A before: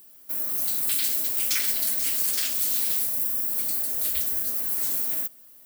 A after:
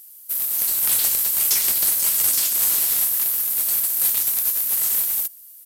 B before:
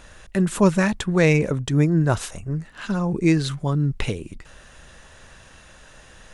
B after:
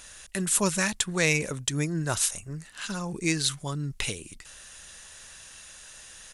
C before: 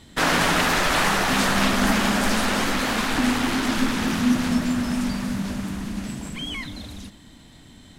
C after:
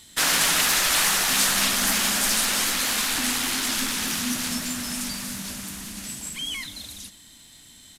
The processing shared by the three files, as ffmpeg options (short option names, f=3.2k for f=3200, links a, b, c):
-af "crystalizer=i=9.5:c=0,aeval=exprs='5.01*(cos(1*acos(clip(val(0)/5.01,-1,1)))-cos(1*PI/2))+1.78*(cos(3*acos(clip(val(0)/5.01,-1,1)))-cos(3*PI/2))+1*(cos(5*acos(clip(val(0)/5.01,-1,1)))-cos(5*PI/2))':c=same,aresample=32000,aresample=44100,volume=-10.5dB"